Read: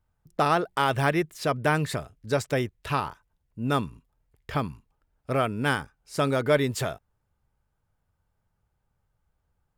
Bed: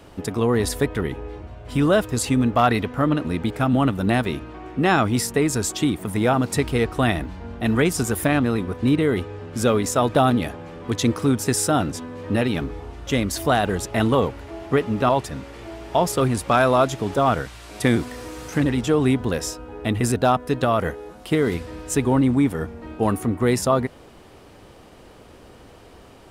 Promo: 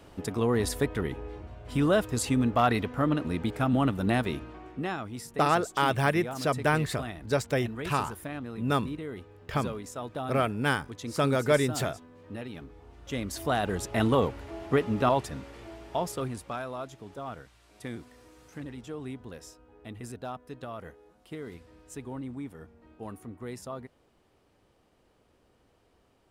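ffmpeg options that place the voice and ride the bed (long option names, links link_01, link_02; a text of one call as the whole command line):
ffmpeg -i stem1.wav -i stem2.wav -filter_complex "[0:a]adelay=5000,volume=-1.5dB[link_01];[1:a]volume=7dB,afade=type=out:start_time=4.43:duration=0.55:silence=0.251189,afade=type=in:start_time=12.75:duration=1.34:silence=0.223872,afade=type=out:start_time=15.05:duration=1.6:silence=0.177828[link_02];[link_01][link_02]amix=inputs=2:normalize=0" out.wav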